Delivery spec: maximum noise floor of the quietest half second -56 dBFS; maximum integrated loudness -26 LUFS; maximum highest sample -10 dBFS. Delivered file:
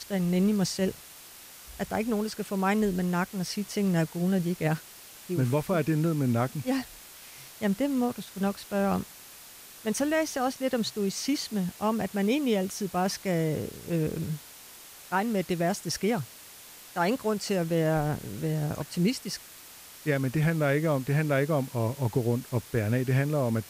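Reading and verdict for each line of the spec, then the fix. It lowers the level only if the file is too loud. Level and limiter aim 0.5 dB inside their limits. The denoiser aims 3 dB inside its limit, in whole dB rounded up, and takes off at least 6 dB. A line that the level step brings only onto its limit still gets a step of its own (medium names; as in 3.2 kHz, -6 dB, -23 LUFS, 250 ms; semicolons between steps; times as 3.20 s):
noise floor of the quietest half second -48 dBFS: fail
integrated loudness -28.5 LUFS: pass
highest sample -14.5 dBFS: pass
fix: noise reduction 11 dB, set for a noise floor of -48 dBFS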